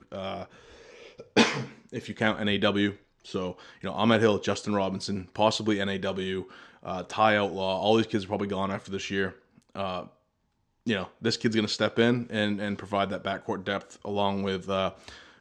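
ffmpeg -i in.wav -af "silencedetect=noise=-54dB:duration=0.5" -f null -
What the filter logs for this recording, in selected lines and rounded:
silence_start: 10.13
silence_end: 10.86 | silence_duration: 0.74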